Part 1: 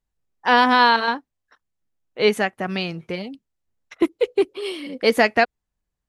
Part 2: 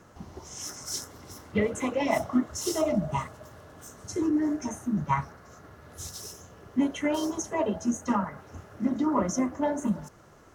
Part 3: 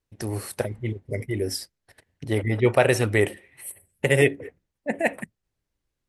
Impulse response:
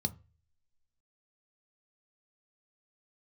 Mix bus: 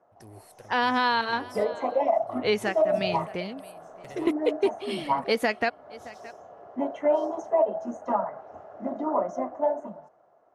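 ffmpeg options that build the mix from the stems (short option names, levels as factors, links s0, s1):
-filter_complex "[0:a]adelay=250,volume=0.596,asplit=2[s0][s1];[s1]volume=0.0668[s2];[1:a]bandpass=f=690:t=q:w=4.7:csg=0,dynaudnorm=f=130:g=17:m=3.76,volume=1.26[s3];[2:a]acompressor=threshold=0.0794:ratio=6,asoftclip=type=hard:threshold=0.0841,volume=0.119[s4];[s2]aecho=0:1:619:1[s5];[s0][s3][s4][s5]amix=inputs=4:normalize=0,alimiter=limit=0.211:level=0:latency=1:release=248"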